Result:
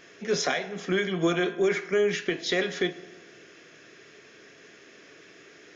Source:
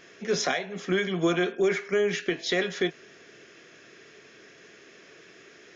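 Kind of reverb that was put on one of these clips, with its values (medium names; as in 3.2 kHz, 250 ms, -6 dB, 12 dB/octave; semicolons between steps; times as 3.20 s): FDN reverb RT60 1.4 s, low-frequency decay 1×, high-frequency decay 0.6×, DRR 13 dB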